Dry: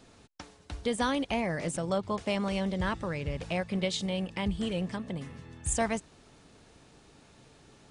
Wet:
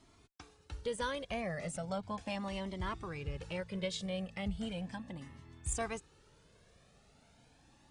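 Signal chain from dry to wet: added harmonics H 4 -35 dB, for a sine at -16 dBFS; cascading flanger rising 0.37 Hz; gain -3 dB

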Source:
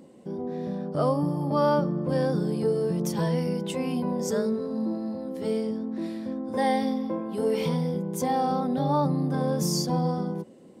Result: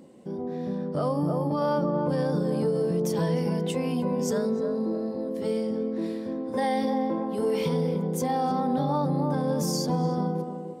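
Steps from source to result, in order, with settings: narrowing echo 0.3 s, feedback 44%, band-pass 490 Hz, level -4.5 dB; limiter -17.5 dBFS, peak gain reduction 6 dB

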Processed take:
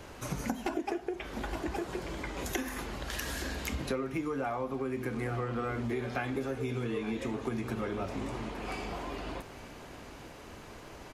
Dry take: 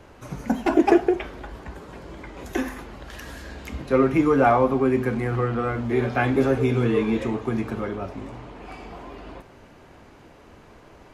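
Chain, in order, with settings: high shelf 3100 Hz +9 dB; on a send: echo 0.866 s -17.5 dB; on the sum: compressor 20:1, threshold -30 dBFS, peak gain reduction 20 dB

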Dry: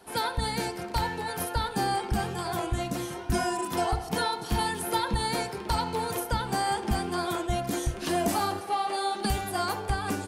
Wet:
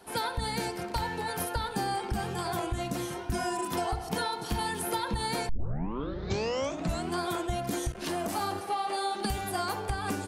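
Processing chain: compressor, threshold -27 dBFS, peak gain reduction 5.5 dB; 5.49 tape start 1.67 s; 7.92–8.37 core saturation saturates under 590 Hz

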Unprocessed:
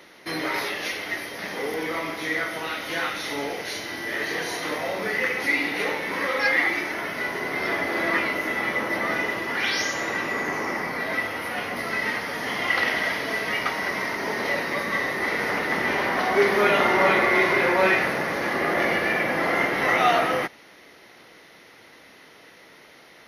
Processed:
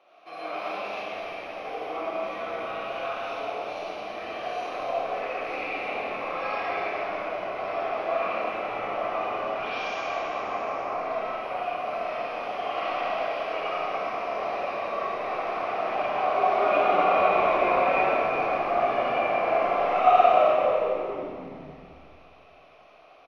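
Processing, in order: vowel filter a; frequency-shifting echo 0.271 s, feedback 52%, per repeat -110 Hz, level -8.5 dB; reverb RT60 2.2 s, pre-delay 20 ms, DRR -7.5 dB

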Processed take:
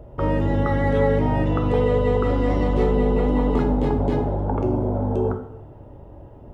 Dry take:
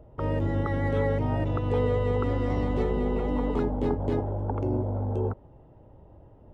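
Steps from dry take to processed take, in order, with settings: in parallel at 0 dB: limiter -25.5 dBFS, peak gain reduction 10.5 dB; on the sum: two-slope reverb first 0.65 s, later 1.9 s, DRR 4 dB; gain +2 dB

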